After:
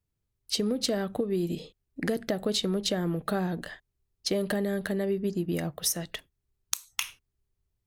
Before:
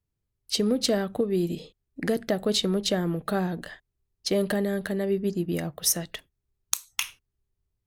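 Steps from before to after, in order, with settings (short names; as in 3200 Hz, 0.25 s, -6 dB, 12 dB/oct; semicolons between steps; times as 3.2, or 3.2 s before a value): compressor, threshold -24 dBFS, peak gain reduction 6.5 dB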